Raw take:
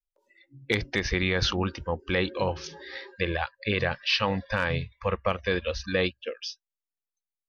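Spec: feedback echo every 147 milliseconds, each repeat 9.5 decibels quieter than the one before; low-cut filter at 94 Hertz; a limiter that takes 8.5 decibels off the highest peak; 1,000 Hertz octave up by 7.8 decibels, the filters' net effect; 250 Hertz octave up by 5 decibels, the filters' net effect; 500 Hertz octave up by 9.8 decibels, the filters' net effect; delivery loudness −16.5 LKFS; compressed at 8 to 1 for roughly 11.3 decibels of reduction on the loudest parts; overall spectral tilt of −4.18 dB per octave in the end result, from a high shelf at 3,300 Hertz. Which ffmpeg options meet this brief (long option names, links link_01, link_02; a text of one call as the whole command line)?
ffmpeg -i in.wav -af "highpass=94,equalizer=frequency=250:width_type=o:gain=4,equalizer=frequency=500:width_type=o:gain=8.5,equalizer=frequency=1000:width_type=o:gain=6.5,highshelf=frequency=3300:gain=4,acompressor=threshold=-25dB:ratio=8,alimiter=limit=-20dB:level=0:latency=1,aecho=1:1:147|294|441|588:0.335|0.111|0.0365|0.012,volume=16dB" out.wav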